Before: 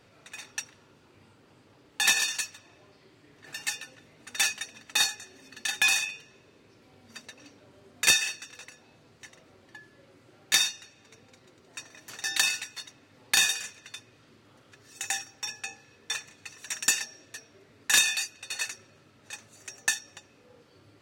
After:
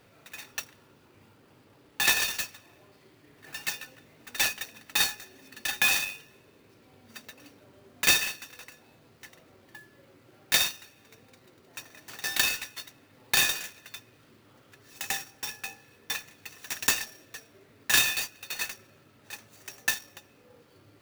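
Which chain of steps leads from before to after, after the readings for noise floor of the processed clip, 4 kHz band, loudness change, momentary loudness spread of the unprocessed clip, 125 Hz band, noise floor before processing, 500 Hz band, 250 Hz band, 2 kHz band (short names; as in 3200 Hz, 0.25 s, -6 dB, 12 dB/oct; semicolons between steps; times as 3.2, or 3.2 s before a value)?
-60 dBFS, -1.0 dB, -0.5 dB, 23 LU, +4.5 dB, -60 dBFS, +4.0 dB, +3.5 dB, -0.5 dB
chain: clock jitter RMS 0.025 ms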